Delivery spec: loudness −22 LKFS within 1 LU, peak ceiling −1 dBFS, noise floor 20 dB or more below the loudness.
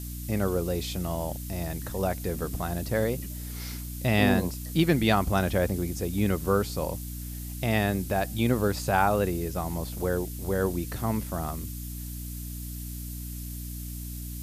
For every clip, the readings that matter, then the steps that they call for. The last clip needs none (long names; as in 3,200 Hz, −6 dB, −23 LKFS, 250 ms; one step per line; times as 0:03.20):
mains hum 60 Hz; hum harmonics up to 300 Hz; level of the hum −35 dBFS; background noise floor −37 dBFS; target noise floor −49 dBFS; integrated loudness −29.0 LKFS; sample peak −8.5 dBFS; target loudness −22.0 LKFS
→ hum removal 60 Hz, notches 5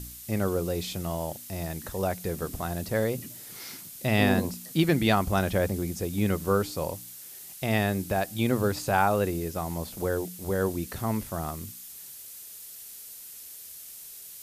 mains hum none found; background noise floor −45 dBFS; target noise floor −49 dBFS
→ broadband denoise 6 dB, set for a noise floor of −45 dBFS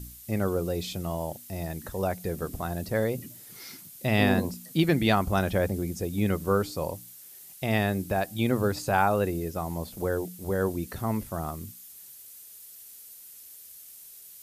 background noise floor −48 dBFS; target noise floor −49 dBFS
→ broadband denoise 6 dB, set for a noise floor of −48 dBFS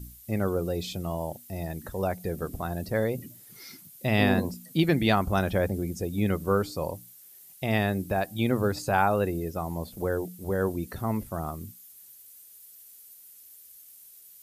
background noise floor −51 dBFS; integrated loudness −28.5 LKFS; sample peak −10.0 dBFS; target loudness −22.0 LKFS
→ level +6.5 dB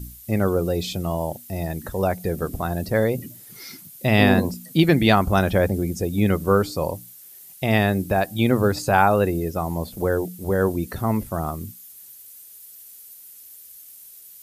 integrated loudness −22.0 LKFS; sample peak −3.5 dBFS; background noise floor −45 dBFS